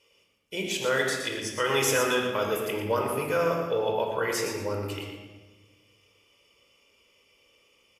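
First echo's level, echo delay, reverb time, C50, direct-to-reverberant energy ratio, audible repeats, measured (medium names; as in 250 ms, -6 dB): -8.0 dB, 118 ms, 1.3 s, 2.0 dB, 0.0 dB, 1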